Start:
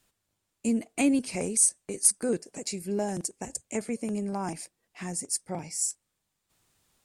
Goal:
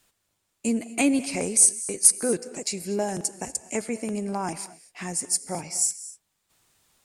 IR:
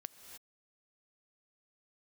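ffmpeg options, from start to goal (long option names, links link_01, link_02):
-filter_complex "[0:a]asplit=2[link_01][link_02];[1:a]atrim=start_sample=2205,afade=type=out:start_time=0.3:duration=0.01,atrim=end_sample=13671,lowshelf=frequency=300:gain=-11[link_03];[link_02][link_03]afir=irnorm=-1:irlink=0,volume=9.5dB[link_04];[link_01][link_04]amix=inputs=2:normalize=0,volume=-3dB"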